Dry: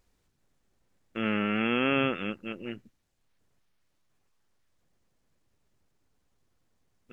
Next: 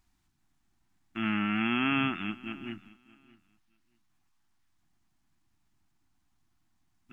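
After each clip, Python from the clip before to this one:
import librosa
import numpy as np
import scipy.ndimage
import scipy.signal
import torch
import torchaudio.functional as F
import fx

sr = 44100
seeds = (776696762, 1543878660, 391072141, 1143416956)

y = scipy.signal.sosfilt(scipy.signal.cheby1(2, 1.0, [320.0, 760.0], 'bandstop', fs=sr, output='sos'), x)
y = fx.echo_feedback(y, sr, ms=621, feedback_pct=17, wet_db=-22)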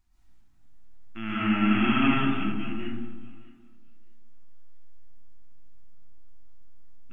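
y = fx.low_shelf(x, sr, hz=75.0, db=10.0)
y = fx.rev_freeverb(y, sr, rt60_s=1.3, hf_ratio=0.3, predelay_ms=90, drr_db=-8.5)
y = y * 10.0 ** (-5.0 / 20.0)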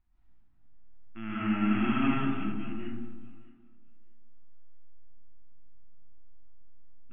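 y = fx.air_absorb(x, sr, metres=360.0)
y = y * 10.0 ** (-3.5 / 20.0)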